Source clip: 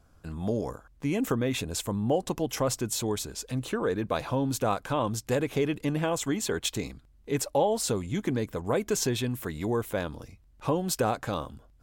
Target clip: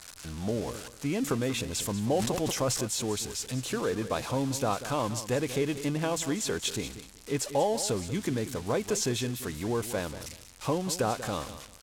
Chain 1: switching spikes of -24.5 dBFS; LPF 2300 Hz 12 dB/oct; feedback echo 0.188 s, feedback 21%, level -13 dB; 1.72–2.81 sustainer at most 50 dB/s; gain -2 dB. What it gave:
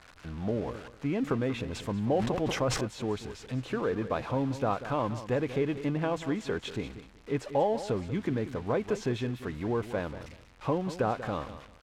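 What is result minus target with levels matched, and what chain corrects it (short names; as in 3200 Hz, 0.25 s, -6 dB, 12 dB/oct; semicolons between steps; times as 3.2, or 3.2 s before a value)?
8000 Hz band -13.0 dB
switching spikes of -24.5 dBFS; LPF 7800 Hz 12 dB/oct; feedback echo 0.188 s, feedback 21%, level -13 dB; 1.72–2.81 sustainer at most 50 dB/s; gain -2 dB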